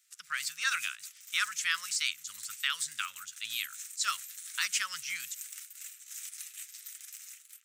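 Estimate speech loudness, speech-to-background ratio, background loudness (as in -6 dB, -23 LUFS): -33.5 LUFS, 10.0 dB, -43.5 LUFS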